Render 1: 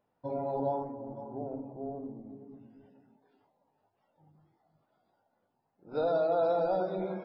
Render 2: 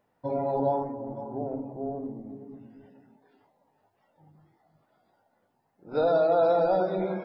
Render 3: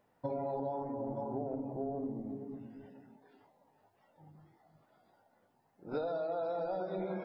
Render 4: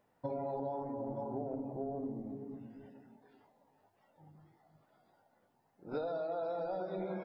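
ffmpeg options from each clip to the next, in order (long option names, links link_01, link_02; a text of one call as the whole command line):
ffmpeg -i in.wav -af "equalizer=frequency=1900:width_type=o:width=0.38:gain=5.5,volume=5.5dB" out.wav
ffmpeg -i in.wav -af "acompressor=threshold=-33dB:ratio=16" out.wav
ffmpeg -i in.wav -af "aecho=1:1:242|484|726|968:0.0794|0.0461|0.0267|0.0155,volume=-1.5dB" out.wav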